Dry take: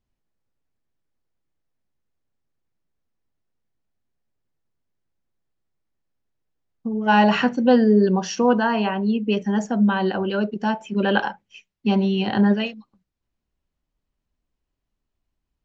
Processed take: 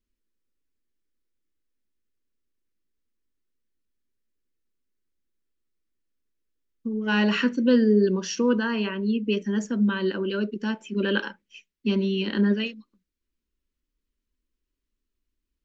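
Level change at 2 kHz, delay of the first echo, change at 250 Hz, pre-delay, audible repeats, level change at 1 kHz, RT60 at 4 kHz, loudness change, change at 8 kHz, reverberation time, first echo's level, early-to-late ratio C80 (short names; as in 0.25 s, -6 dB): -3.5 dB, none, -3.5 dB, none, none, -14.0 dB, none, -4.0 dB, n/a, none, none, none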